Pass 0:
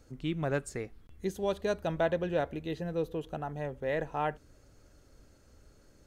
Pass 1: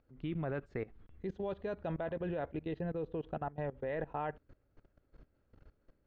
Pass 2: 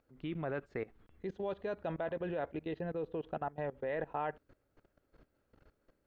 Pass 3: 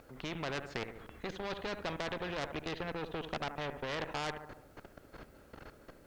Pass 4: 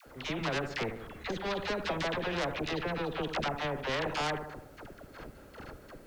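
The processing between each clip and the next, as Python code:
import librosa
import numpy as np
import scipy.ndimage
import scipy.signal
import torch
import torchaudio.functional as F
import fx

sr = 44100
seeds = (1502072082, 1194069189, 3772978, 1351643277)

y1 = fx.level_steps(x, sr, step_db=19)
y1 = scipy.signal.sosfilt(scipy.signal.bessel(4, 2300.0, 'lowpass', norm='mag', fs=sr, output='sos'), y1)
y1 = y1 * librosa.db_to_amplitude(2.0)
y2 = fx.low_shelf(y1, sr, hz=180.0, db=-10.0)
y2 = y2 * librosa.db_to_amplitude(2.0)
y3 = fx.echo_filtered(y2, sr, ms=73, feedback_pct=43, hz=1600.0, wet_db=-15.5)
y3 = fx.tube_stage(y3, sr, drive_db=34.0, bias=0.5)
y3 = fx.spectral_comp(y3, sr, ratio=2.0)
y3 = y3 * librosa.db_to_amplitude(9.0)
y4 = fx.dispersion(y3, sr, late='lows', ms=69.0, hz=690.0)
y4 = y4 * librosa.db_to_amplitude(5.5)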